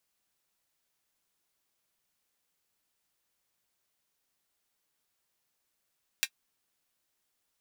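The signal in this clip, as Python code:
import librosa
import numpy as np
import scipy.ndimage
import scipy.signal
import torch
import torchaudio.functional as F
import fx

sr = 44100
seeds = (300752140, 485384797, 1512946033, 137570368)

y = fx.drum_hat(sr, length_s=0.24, from_hz=2100.0, decay_s=0.07)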